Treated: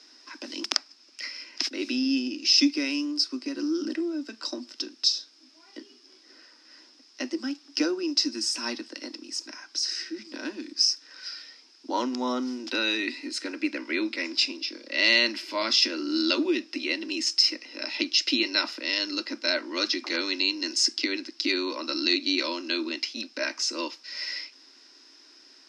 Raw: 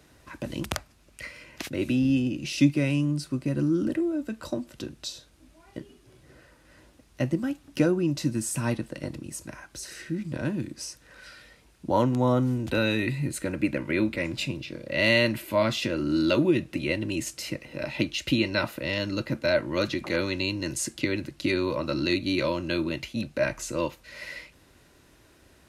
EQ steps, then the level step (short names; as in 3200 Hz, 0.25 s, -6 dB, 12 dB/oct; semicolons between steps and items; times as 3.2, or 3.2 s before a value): steep high-pass 250 Hz 72 dB/oct; synth low-pass 5200 Hz, resonance Q 13; bell 550 Hz -9 dB 0.93 oct; 0.0 dB